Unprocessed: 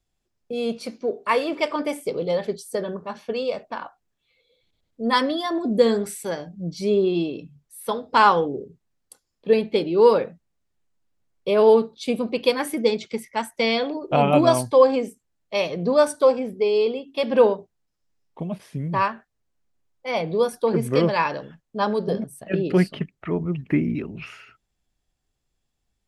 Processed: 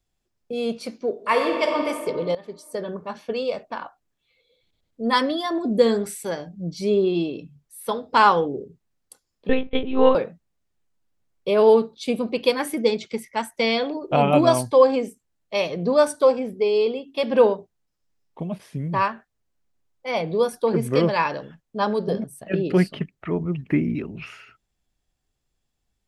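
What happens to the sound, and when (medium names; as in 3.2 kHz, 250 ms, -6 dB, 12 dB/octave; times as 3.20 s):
1.12–1.80 s: reverb throw, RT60 2 s, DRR 2.5 dB
2.35–3.00 s: fade in linear, from -18 dB
9.49–10.15 s: monotone LPC vocoder at 8 kHz 260 Hz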